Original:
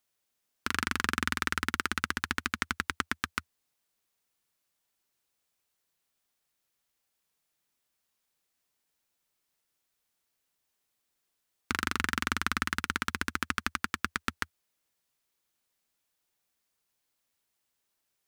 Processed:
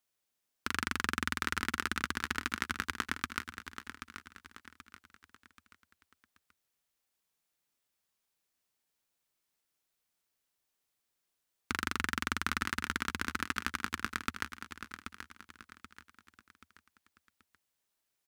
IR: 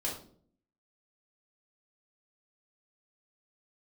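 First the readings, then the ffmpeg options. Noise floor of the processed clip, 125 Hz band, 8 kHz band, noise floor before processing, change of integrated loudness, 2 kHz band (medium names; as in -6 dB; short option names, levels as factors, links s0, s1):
-84 dBFS, -3.0 dB, -3.0 dB, -81 dBFS, -3.5 dB, -3.0 dB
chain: -af "aecho=1:1:781|1562|2343|3124:0.316|0.13|0.0532|0.0218,volume=0.668"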